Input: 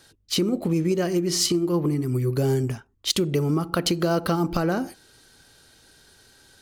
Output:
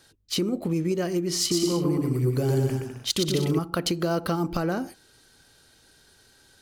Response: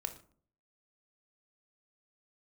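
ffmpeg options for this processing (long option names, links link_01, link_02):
-filter_complex "[0:a]asettb=1/sr,asplit=3[link_01][link_02][link_03];[link_01]atrim=end=1.394[link_04];[link_02]atrim=start=1.39:end=3.59,asetpts=PTS-STARTPTS,afade=type=in:duration=0.004:curve=qsin,afade=type=out:start_time=2.196:duration=0.004:curve=qsin,aecho=1:1:120|204|262.8|304|332.8:0.631|0.398|0.251|0.158|0.1,atrim=end_sample=97020[link_05];[link_03]atrim=start=3.586[link_06];[link_04][link_05]acrossfade=duration=0.004:curve1=hsin:curve2=qsin[link_07];[link_07][link_06]acrossfade=duration=0.004:curve1=qsin:curve2=hsin,volume=-3dB"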